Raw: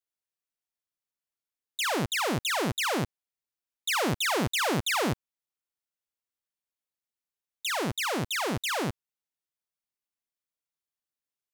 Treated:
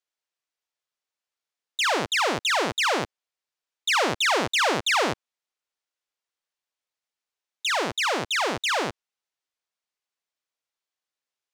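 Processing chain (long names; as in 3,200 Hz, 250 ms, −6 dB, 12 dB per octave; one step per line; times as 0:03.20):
three-way crossover with the lows and the highs turned down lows −13 dB, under 360 Hz, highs −15 dB, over 7,700 Hz
level +6 dB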